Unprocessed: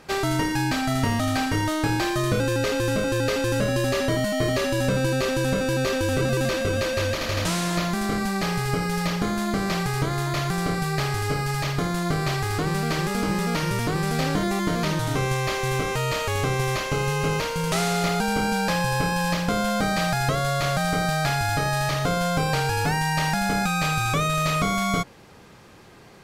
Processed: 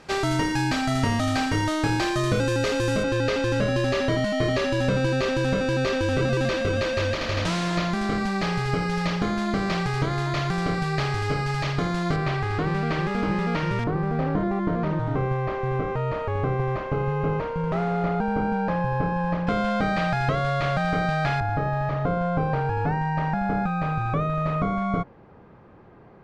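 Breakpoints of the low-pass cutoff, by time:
7.9 kHz
from 3.03 s 4.7 kHz
from 12.16 s 2.8 kHz
from 13.84 s 1.2 kHz
from 19.47 s 2.8 kHz
from 21.40 s 1.2 kHz

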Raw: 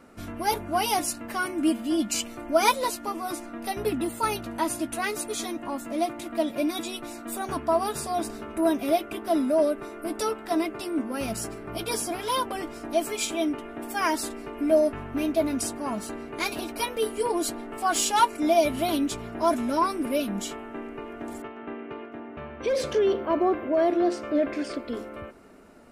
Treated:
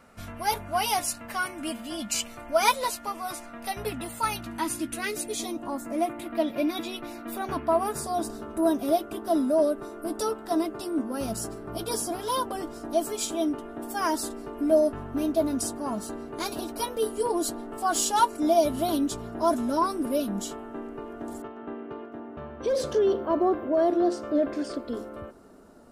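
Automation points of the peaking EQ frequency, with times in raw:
peaking EQ -12.5 dB 0.71 oct
4.09 s 320 Hz
5.30 s 1.2 kHz
6.39 s 8 kHz
7.61 s 8 kHz
8.09 s 2.3 kHz

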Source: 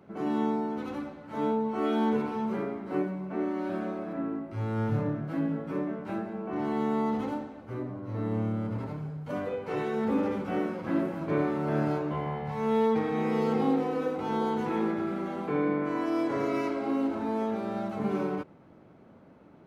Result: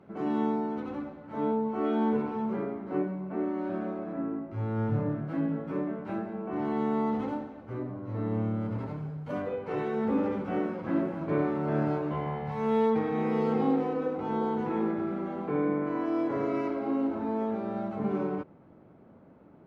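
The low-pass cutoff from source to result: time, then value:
low-pass 6 dB/octave
3 kHz
from 0.80 s 1.5 kHz
from 5.10 s 2.6 kHz
from 8.61 s 3.8 kHz
from 9.42 s 2.2 kHz
from 12.03 s 3.8 kHz
from 12.90 s 2.3 kHz
from 13.93 s 1.4 kHz

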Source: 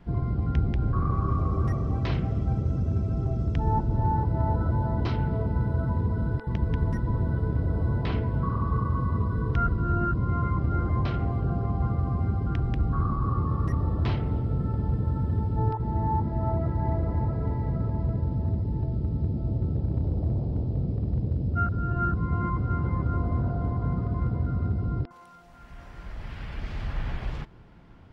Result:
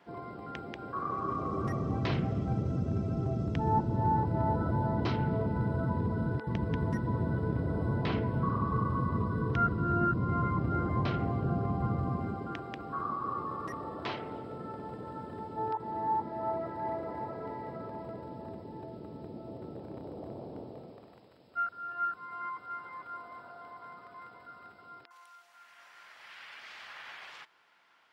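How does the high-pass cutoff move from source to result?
0.96 s 470 Hz
1.92 s 140 Hz
12.04 s 140 Hz
12.65 s 430 Hz
20.63 s 430 Hz
21.29 s 1.3 kHz

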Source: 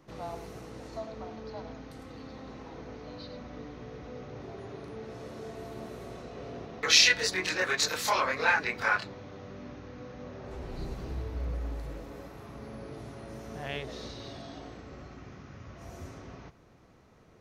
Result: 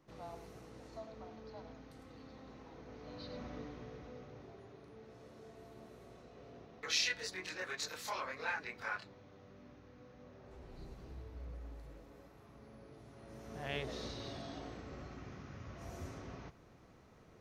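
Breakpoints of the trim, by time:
2.83 s -9.5 dB
3.44 s -2 dB
4.74 s -13.5 dB
13.05 s -13.5 dB
13.82 s -2.5 dB

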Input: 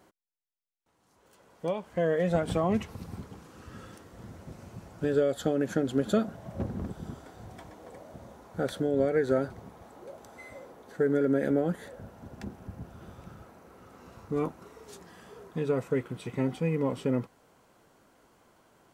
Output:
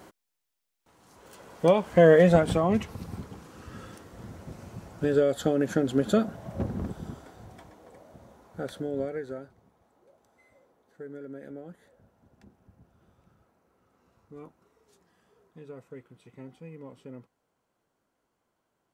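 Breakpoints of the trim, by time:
2.16 s +10.5 dB
2.60 s +2.5 dB
6.87 s +2.5 dB
7.85 s -4.5 dB
8.98 s -4.5 dB
9.52 s -16 dB

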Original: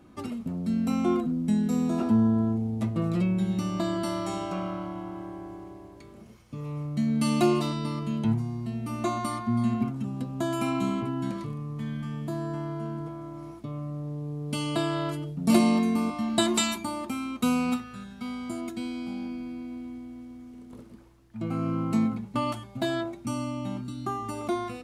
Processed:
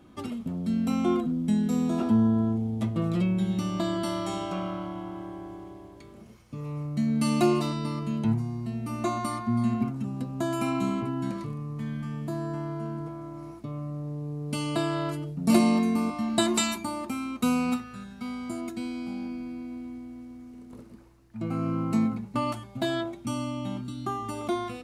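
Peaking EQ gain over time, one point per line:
peaking EQ 3.3 kHz 0.2 oct
5.79 s +6.5 dB
6.69 s -5 dB
22.52 s -5 dB
23.01 s +7 dB

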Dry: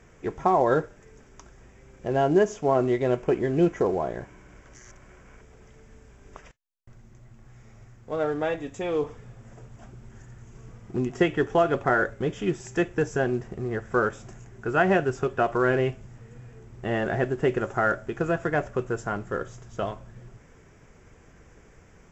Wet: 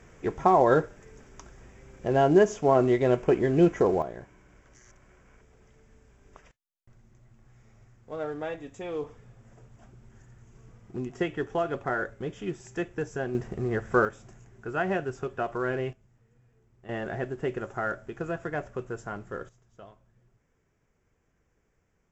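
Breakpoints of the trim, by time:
+1 dB
from 4.02 s -7 dB
from 13.35 s +1 dB
from 14.05 s -7 dB
from 15.93 s -18 dB
from 16.89 s -7 dB
from 19.49 s -19 dB

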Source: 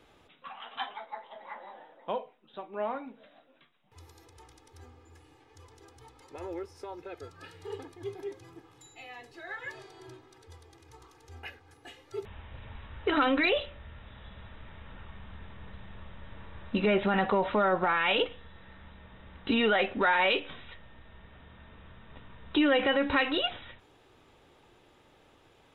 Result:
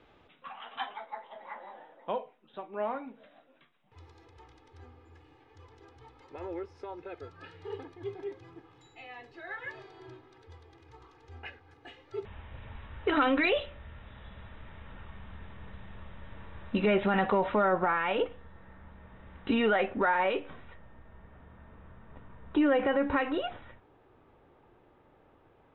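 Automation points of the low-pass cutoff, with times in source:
17.33 s 3.3 kHz
18.07 s 1.6 kHz
18.86 s 1.6 kHz
19.45 s 2.6 kHz
20.13 s 1.5 kHz

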